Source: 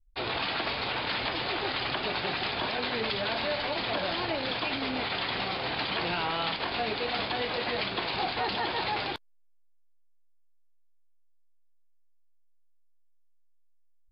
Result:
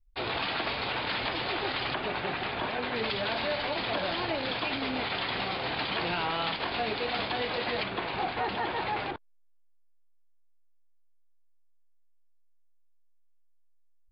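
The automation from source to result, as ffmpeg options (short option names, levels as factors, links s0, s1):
-af "asetnsamples=n=441:p=0,asendcmd='1.94 lowpass f 2700;2.96 lowpass f 4700;7.83 lowpass f 2600;9.11 lowpass f 1400',lowpass=4700"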